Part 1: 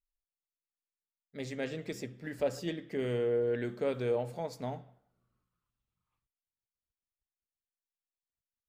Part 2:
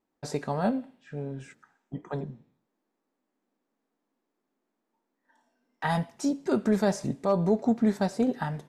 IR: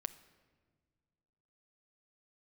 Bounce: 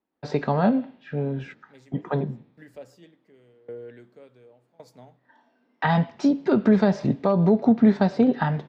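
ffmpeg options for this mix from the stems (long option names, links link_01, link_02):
-filter_complex "[0:a]aeval=exprs='val(0)*pow(10,-23*if(lt(mod(0.9*n/s,1),2*abs(0.9)/1000),1-mod(0.9*n/s,1)/(2*abs(0.9)/1000),(mod(0.9*n/s,1)-2*abs(0.9)/1000)/(1-2*abs(0.9)/1000))/20)':channel_layout=same,adelay=350,volume=-17dB[link_01];[1:a]lowpass=frequency=4200:width=0.5412,lowpass=frequency=4200:width=1.3066,volume=-2.5dB,asplit=2[link_02][link_03];[link_03]apad=whole_len=398530[link_04];[link_01][link_04]sidechaincompress=threshold=-43dB:ratio=8:attack=16:release=303[link_05];[link_05][link_02]amix=inputs=2:normalize=0,dynaudnorm=framelen=110:gausssize=5:maxgain=11dB,highpass=55,acrossover=split=250[link_06][link_07];[link_07]acompressor=threshold=-19dB:ratio=6[link_08];[link_06][link_08]amix=inputs=2:normalize=0"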